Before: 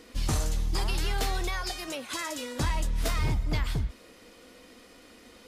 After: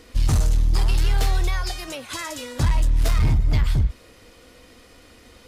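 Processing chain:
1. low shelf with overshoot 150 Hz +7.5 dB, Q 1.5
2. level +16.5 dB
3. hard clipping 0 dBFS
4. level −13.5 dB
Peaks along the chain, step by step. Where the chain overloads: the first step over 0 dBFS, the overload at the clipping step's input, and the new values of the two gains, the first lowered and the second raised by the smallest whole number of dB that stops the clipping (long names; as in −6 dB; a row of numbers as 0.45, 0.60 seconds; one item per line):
−10.5, +6.0, 0.0, −13.5 dBFS
step 2, 6.0 dB
step 2 +10.5 dB, step 4 −7.5 dB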